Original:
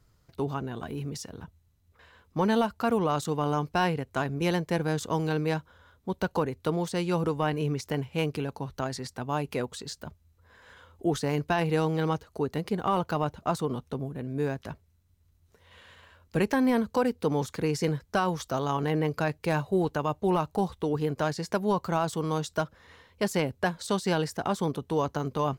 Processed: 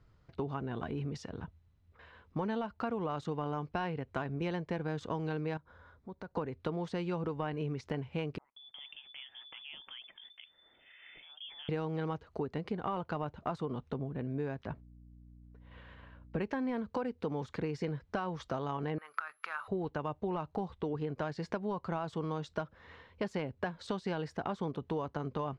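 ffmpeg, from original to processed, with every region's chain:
-filter_complex "[0:a]asettb=1/sr,asplit=3[a][b][c];[a]atrim=end=5.574[d];[b]atrim=start=5.57:end=6.37,asetpts=PTS-STARTPTS,afade=t=in:d=0.004:c=qsin,afade=t=out:st=0.796:d=0.004:c=qsin,equalizer=f=3k:w=3.3:g=-11,acompressor=threshold=-49dB:ratio=2.5:attack=3.2:release=140:knee=1:detection=peak[e];[c]atrim=start=6.366[f];[d][e]acrossfade=d=0.004:c1=hsin:c2=qsin[g];[g][f]acrossfade=d=0.004:c1=qsin:c2=hsin,asettb=1/sr,asplit=3[h][i][j];[h]atrim=end=8.384[k];[i]atrim=start=8.38:end=11.69,asetpts=PTS-STARTPTS,afade=t=in:d=0.004:c=qsin,afade=t=out:st=3.306:d=0.004:c=qsin,acompressor=threshold=-43dB:ratio=4:attack=3.2:release=140:knee=1:detection=peak,acrossover=split=210|2700[l][m][n];[l]adelay=180[o];[m]adelay=360[p];[o][p][n]amix=inputs=3:normalize=0,atrim=end_sample=145971,lowpass=f=3.1k:t=q:w=0.5098,lowpass=f=3.1k:t=q:w=0.6013,lowpass=f=3.1k:t=q:w=0.9,lowpass=f=3.1k:t=q:w=2.563,afreqshift=-3600[q];[j]atrim=start=11.686[r];[k][q]acrossfade=d=0.004:c1=hsin:c2=qsin[s];[s][r]acrossfade=d=0.004:c1=qsin:c2=hsin,asettb=1/sr,asplit=3[t][u][v];[t]atrim=end=14.654[w];[u]atrim=start=14.65:end=16.41,asetpts=PTS-STARTPTS,afade=t=in:d=0.004:c=qsin,afade=t=out:st=1.756:d=0.004:c=qsin,highshelf=f=3.7k:g=-11,agate=range=-33dB:threshold=-56dB:ratio=3:release=100:detection=peak,aeval=exprs='val(0)+0.002*(sin(2*PI*60*n/s)+sin(2*PI*2*60*n/s)/2+sin(2*PI*3*60*n/s)/3+sin(2*PI*4*60*n/s)/4+sin(2*PI*5*60*n/s)/5)':c=same[x];[v]atrim=start=16.406[y];[w][x]acrossfade=d=0.004:c1=hsin:c2=qsin[z];[z][y]acrossfade=d=0.004:c1=qsin:c2=hsin,asettb=1/sr,asplit=3[aa][ab][ac];[aa]atrim=end=18.984[ad];[ab]atrim=start=18.98:end=19.68,asetpts=PTS-STARTPTS,afade=t=in:d=0.004:c=qsin,afade=t=out:st=0.696:d=0.004:c=qsin,acompressor=threshold=-33dB:ratio=12:attack=3.2:release=140:knee=1:detection=peak,highpass=f=1.3k:t=q:w=8.7,aeval=exprs='val(0)+0.00562*sin(2*PI*11000*n/s)':c=same[ae];[ac]atrim=start=19.676[af];[ad][ae]acrossfade=d=0.004:c1=hsin:c2=qsin[ag];[ag][af]acrossfade=d=0.004:c1=qsin:c2=hsin,lowpass=3.1k,acompressor=threshold=-33dB:ratio=5"

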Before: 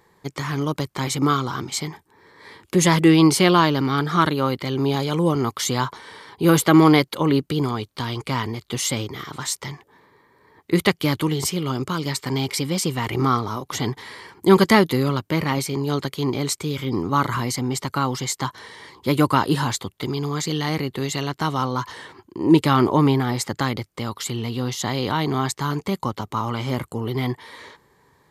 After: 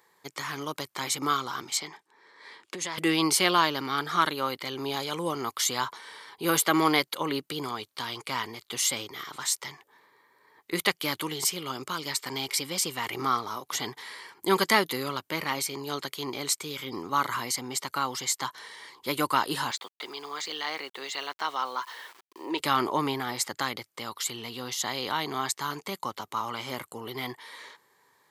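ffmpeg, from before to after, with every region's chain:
-filter_complex "[0:a]asettb=1/sr,asplit=3[a][b][c];[a]atrim=end=1.774[d];[b]atrim=start=1.77:end=2.98,asetpts=PTS-STARTPTS,afade=t=in:d=0.004:c=qsin,afade=t=out:st=1.206:d=0.004:c=qsin,acompressor=threshold=-21dB:ratio=12:attack=3.2:release=140:knee=1:detection=peak,highpass=180,lowpass=7k[e];[c]atrim=start=2.976[f];[d][e]acrossfade=d=0.004:c1=hsin:c2=qsin[g];[g][f]acrossfade=d=0.004:c1=qsin:c2=hsin,asettb=1/sr,asplit=3[h][i][j];[h]atrim=end=19.714[k];[i]atrim=start=19.71:end=22.6,asetpts=PTS-STARTPTS,afade=t=in:d=0.004:c=qsin,afade=t=out:st=2.886:d=0.004:c=qsin,highpass=440,lowpass=4.6k,aeval=exprs='val(0)*gte(abs(val(0)),0.00473)':c=same[l];[j]atrim=start=22.596[m];[k][l]acrossfade=d=0.004:c1=hsin:c2=qsin[n];[n][m]acrossfade=d=0.004:c1=qsin:c2=hsin,highpass=f=920:p=1,highshelf=f=10k:g=5,volume=-2.5dB"

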